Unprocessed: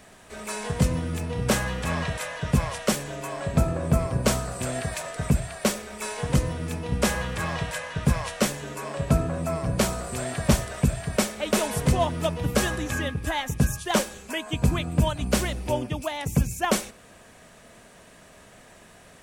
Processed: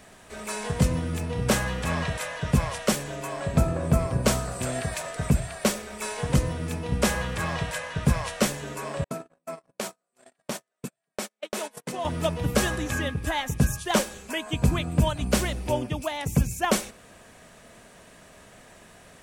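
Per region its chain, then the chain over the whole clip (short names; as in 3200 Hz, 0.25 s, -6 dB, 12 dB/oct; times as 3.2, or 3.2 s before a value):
9.04–12.05 Bessel high-pass 280 Hz, order 6 + gate -29 dBFS, range -47 dB + compressor 2.5:1, threshold -30 dBFS
whole clip: dry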